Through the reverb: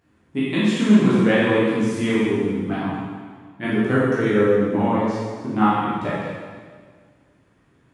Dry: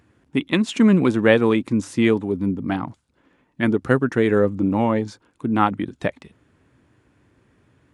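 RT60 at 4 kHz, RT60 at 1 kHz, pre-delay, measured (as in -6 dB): 1.6 s, 1.7 s, 6 ms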